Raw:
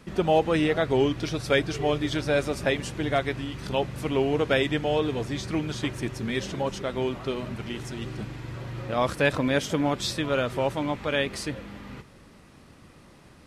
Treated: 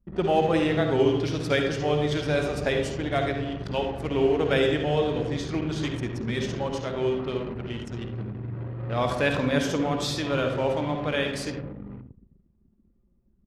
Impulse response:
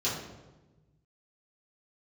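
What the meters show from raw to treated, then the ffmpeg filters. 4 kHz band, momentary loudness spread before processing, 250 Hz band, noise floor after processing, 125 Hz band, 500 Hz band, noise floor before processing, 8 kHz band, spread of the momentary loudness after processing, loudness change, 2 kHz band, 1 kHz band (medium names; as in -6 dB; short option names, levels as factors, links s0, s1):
-0.5 dB, 11 LU, +0.5 dB, -64 dBFS, +2.0 dB, +1.0 dB, -52 dBFS, -2.0 dB, 12 LU, +0.5 dB, -1.0 dB, 0.0 dB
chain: -filter_complex "[0:a]asplit=2[s0][s1];[1:a]atrim=start_sample=2205,adelay=52[s2];[s1][s2]afir=irnorm=-1:irlink=0,volume=0.251[s3];[s0][s3]amix=inputs=2:normalize=0,anlmdn=3.98,asplit=2[s4][s5];[s5]adelay=80,highpass=300,lowpass=3400,asoftclip=type=hard:threshold=0.141,volume=0.141[s6];[s4][s6]amix=inputs=2:normalize=0,volume=0.794"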